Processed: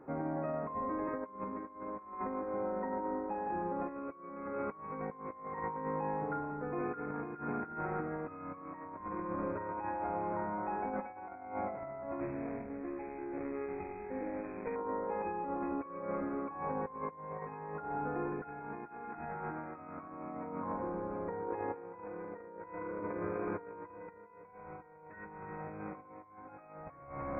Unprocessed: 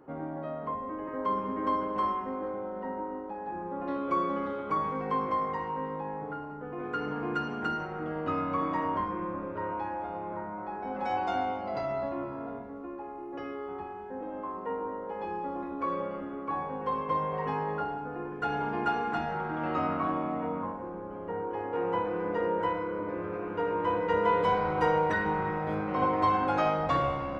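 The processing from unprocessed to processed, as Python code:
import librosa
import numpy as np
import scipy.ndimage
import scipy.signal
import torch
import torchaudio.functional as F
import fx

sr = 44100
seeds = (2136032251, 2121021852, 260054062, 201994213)

y = fx.median_filter(x, sr, points=41, at=(12.2, 14.76))
y = fx.over_compress(y, sr, threshold_db=-36.0, ratio=-0.5)
y = fx.brickwall_lowpass(y, sr, high_hz=2600.0)
y = y * librosa.db_to_amplitude(-3.5)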